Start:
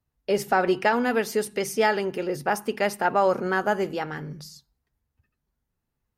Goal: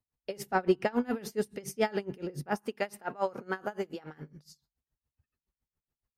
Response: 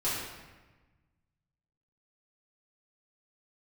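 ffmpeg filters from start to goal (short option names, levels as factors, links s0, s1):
-filter_complex "[0:a]asettb=1/sr,asplit=3[s0][s1][s2];[s0]atrim=end=0.464[s3];[s1]atrim=start=0.46:end=2.58,asetpts=PTS-STARTPTS,afade=t=in:d=0.004:c=qsin,afade=t=out:st=2.116:d=0.004:c=qsin,lowshelf=f=290:g=11[s4];[s2]atrim=start=2.576[s5];[s3][s4]acrossfade=d=0.004:c1=hsin:c2=qsin[s6];[s6][s5]acrossfade=d=0.004:c1=qsin:c2=hsin,aeval=exprs='val(0)*pow(10,-24*(0.5-0.5*cos(2*PI*7.1*n/s))/20)':c=same,volume=0.562"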